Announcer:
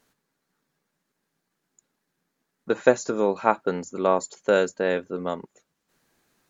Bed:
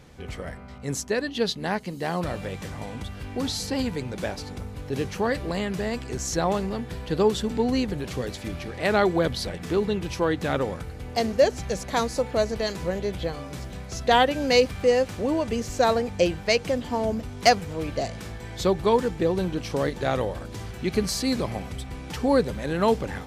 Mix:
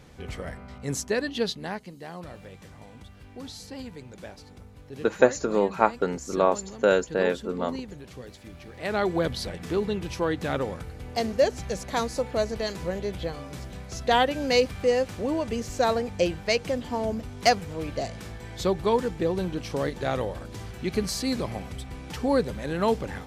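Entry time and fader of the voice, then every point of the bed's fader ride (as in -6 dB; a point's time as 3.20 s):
2.35 s, -0.5 dB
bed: 1.33 s -0.5 dB
2.07 s -12 dB
8.51 s -12 dB
9.17 s -2.5 dB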